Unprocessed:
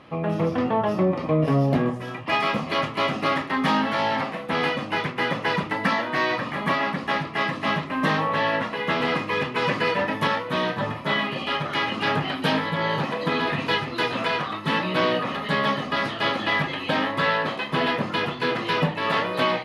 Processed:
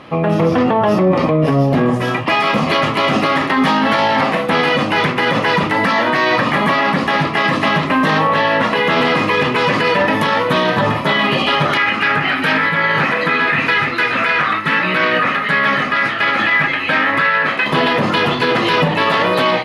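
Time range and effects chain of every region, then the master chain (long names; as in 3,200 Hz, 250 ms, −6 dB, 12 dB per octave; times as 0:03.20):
0:11.77–0:17.66: flat-topped bell 1,800 Hz +10 dB 1.2 octaves + amplitude tremolo 1.5 Hz, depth 41% + tuned comb filter 92 Hz, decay 1.5 s, harmonics odd, mix 50%
whole clip: low-shelf EQ 130 Hz −3.5 dB; automatic gain control gain up to 5 dB; boost into a limiter +16 dB; level −5 dB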